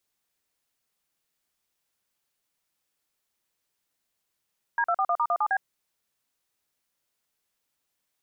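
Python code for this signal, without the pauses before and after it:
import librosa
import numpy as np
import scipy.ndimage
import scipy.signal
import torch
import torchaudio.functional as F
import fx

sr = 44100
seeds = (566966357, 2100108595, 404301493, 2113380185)

y = fx.dtmf(sr, digits='D241*17B', tone_ms=61, gap_ms=43, level_db=-24.0)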